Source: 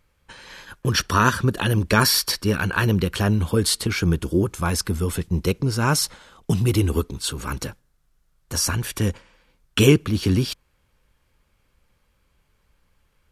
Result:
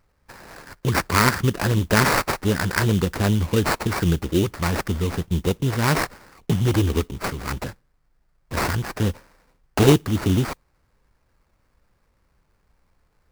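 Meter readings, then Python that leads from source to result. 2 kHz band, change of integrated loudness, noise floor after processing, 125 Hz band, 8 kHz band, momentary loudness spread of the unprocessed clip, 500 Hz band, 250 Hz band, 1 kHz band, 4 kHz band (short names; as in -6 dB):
+1.0 dB, -0.5 dB, -67 dBFS, 0.0 dB, -5.0 dB, 11 LU, +0.5 dB, 0.0 dB, +1.5 dB, -4.5 dB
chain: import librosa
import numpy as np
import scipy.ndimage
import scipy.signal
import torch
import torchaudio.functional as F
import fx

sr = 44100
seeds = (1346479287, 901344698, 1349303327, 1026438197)

y = fx.sample_hold(x, sr, seeds[0], rate_hz=3300.0, jitter_pct=20)
y = fx.mod_noise(y, sr, seeds[1], snr_db=31)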